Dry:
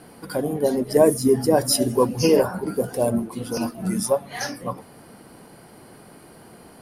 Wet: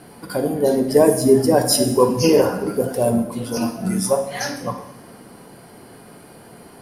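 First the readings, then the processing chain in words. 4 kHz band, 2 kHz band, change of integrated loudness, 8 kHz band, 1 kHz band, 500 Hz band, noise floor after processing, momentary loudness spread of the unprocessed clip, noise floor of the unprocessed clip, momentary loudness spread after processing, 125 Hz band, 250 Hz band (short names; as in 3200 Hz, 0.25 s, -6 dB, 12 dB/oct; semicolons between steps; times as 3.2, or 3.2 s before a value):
+3.5 dB, +3.0 dB, +3.5 dB, +3.5 dB, +3.5 dB, +3.5 dB, -44 dBFS, 12 LU, -48 dBFS, 11 LU, +3.5 dB, +3.5 dB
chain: two-slope reverb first 0.78 s, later 2 s, DRR 4.5 dB; gain +2 dB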